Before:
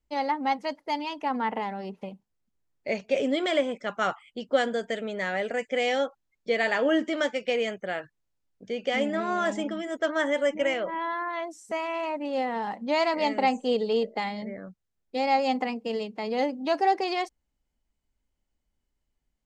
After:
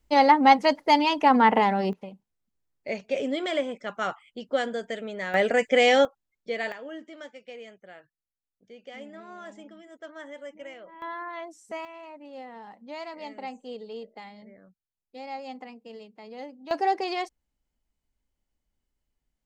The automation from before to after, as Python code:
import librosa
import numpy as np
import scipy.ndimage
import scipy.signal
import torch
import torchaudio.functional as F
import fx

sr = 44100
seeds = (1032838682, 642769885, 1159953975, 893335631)

y = fx.gain(x, sr, db=fx.steps((0.0, 10.0), (1.93, -2.5), (5.34, 7.0), (6.05, -5.0), (6.72, -16.0), (11.02, -5.0), (11.85, -13.5), (16.71, -1.5)))